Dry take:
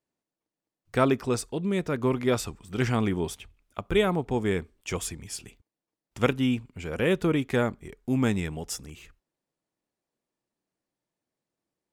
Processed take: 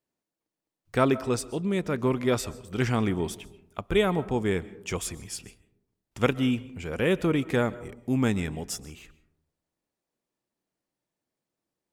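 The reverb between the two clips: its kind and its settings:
comb and all-pass reverb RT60 0.79 s, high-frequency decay 0.3×, pre-delay 95 ms, DRR 18 dB

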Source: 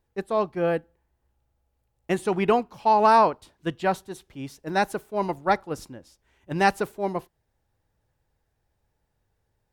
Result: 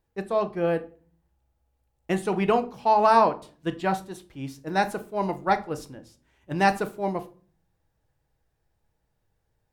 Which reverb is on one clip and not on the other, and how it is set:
rectangular room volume 310 cubic metres, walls furnished, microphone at 0.63 metres
level −1.5 dB

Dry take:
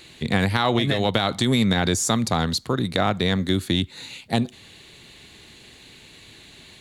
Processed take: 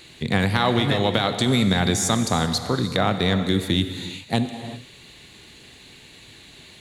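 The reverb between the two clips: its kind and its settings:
reverb whose tail is shaped and stops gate 410 ms flat, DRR 8 dB

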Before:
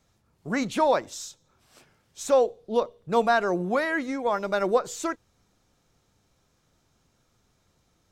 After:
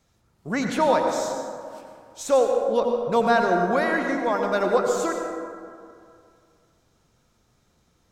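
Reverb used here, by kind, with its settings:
dense smooth reverb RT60 2.3 s, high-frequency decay 0.4×, pre-delay 75 ms, DRR 2.5 dB
level +1 dB

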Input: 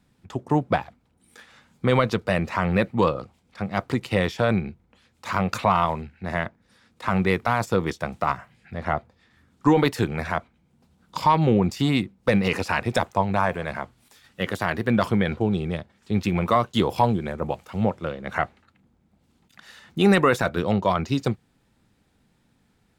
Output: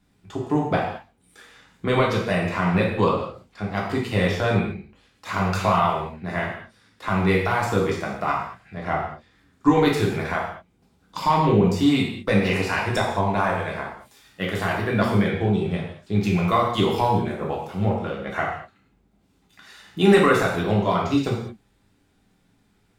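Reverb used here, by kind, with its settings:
reverb whose tail is shaped and stops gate 250 ms falling, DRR −3.5 dB
level −3.5 dB

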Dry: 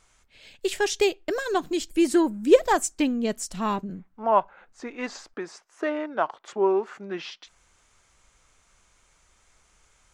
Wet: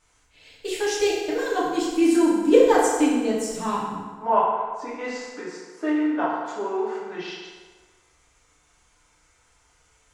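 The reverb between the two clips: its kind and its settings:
feedback delay network reverb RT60 1.5 s, low-frequency decay 0.75×, high-frequency decay 0.7×, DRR −8 dB
level −7 dB

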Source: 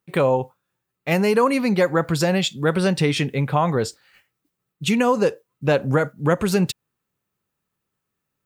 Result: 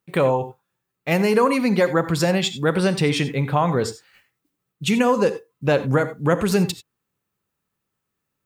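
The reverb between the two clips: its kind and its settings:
reverb whose tail is shaped and stops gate 110 ms rising, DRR 12 dB

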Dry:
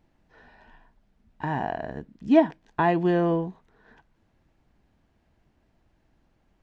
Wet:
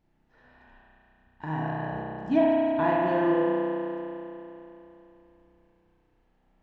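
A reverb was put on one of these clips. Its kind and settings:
spring reverb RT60 3.2 s, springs 32 ms, chirp 60 ms, DRR −5.5 dB
level −7.5 dB

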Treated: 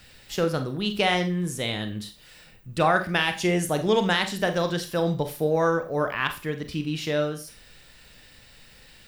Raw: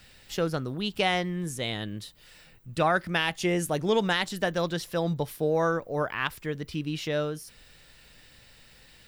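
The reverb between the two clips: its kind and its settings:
four-comb reverb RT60 0.32 s, combs from 30 ms, DRR 7.5 dB
level +2.5 dB

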